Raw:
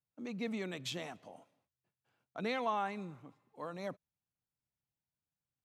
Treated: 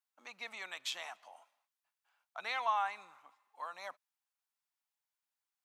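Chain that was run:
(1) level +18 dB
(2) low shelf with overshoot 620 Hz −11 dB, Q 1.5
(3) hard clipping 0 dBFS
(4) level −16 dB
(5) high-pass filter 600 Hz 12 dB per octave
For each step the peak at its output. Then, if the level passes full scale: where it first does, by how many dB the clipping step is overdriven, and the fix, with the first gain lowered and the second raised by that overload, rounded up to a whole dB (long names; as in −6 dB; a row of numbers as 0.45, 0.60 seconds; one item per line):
−6.0, −5.0, −5.0, −21.0, −21.5 dBFS
no step passes full scale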